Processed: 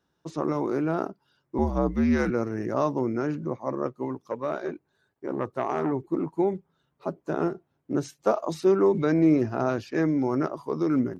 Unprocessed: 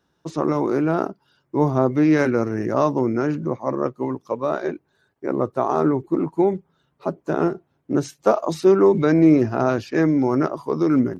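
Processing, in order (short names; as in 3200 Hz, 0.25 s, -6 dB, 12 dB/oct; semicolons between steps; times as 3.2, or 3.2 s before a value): 1.58–2.3 frequency shift -71 Hz; 4.13–5.92 core saturation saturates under 730 Hz; gain -6 dB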